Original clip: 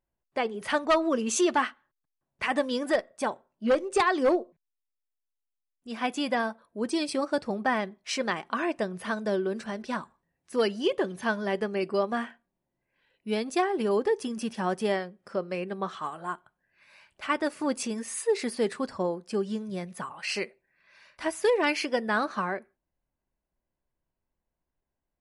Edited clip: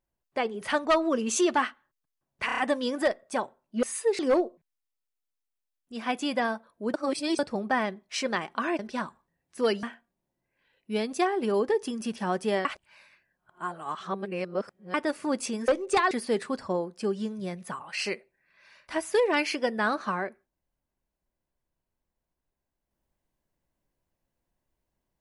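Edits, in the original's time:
0:02.46: stutter 0.03 s, 5 plays
0:03.71–0:04.14: swap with 0:18.05–0:18.41
0:06.89–0:07.34: reverse
0:08.74–0:09.74: remove
0:10.78–0:12.20: remove
0:15.02–0:17.31: reverse

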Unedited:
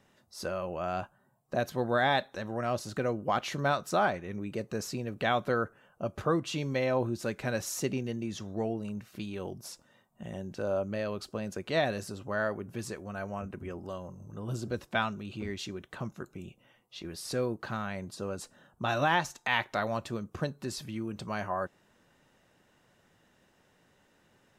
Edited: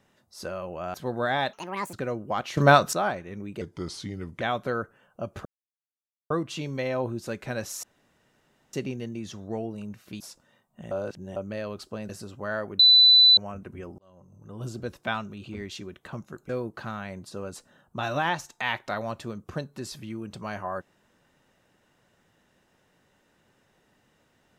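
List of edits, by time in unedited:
0:00.94–0:01.66: remove
0:02.25–0:02.91: play speed 164%
0:03.55–0:03.91: clip gain +12 dB
0:04.59–0:05.23: play speed 80%
0:06.27: splice in silence 0.85 s
0:07.80: splice in room tone 0.90 s
0:09.27–0:09.62: remove
0:10.33–0:10.78: reverse
0:11.51–0:11.97: remove
0:12.67–0:13.25: beep over 3,990 Hz −12 dBFS
0:13.86–0:14.54: fade in
0:16.37–0:17.35: remove

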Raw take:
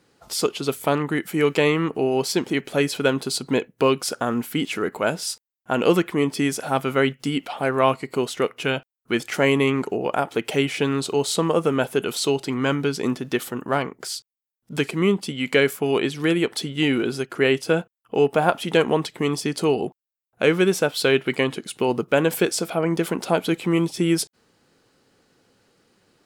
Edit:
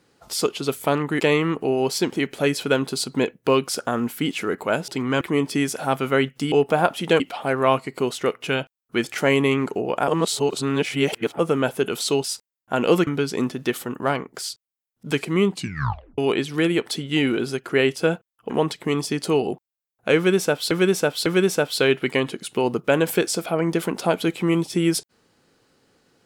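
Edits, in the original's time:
0:01.20–0:01.54: remove
0:05.22–0:06.05: swap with 0:12.40–0:12.73
0:10.24–0:11.55: reverse
0:15.17: tape stop 0.67 s
0:18.16–0:18.84: move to 0:07.36
0:20.50–0:21.05: repeat, 3 plays

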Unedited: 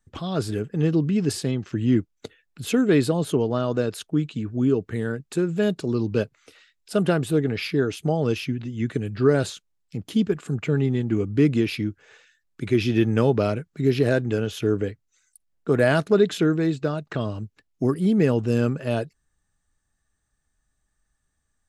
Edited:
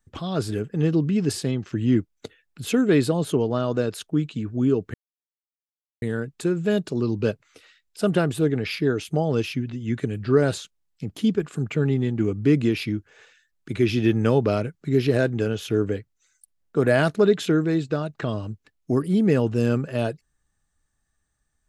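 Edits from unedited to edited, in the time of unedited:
0:04.94: splice in silence 1.08 s

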